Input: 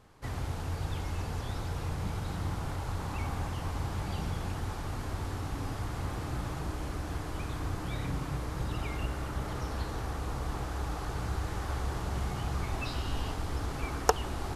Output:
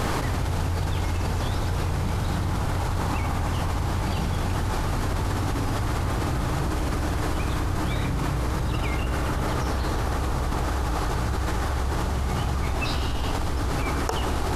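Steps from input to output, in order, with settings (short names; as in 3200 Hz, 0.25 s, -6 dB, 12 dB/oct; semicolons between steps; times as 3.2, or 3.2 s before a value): reverb RT60 1.8 s, pre-delay 3 ms, DRR 17 dB; fast leveller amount 100%; gain -5 dB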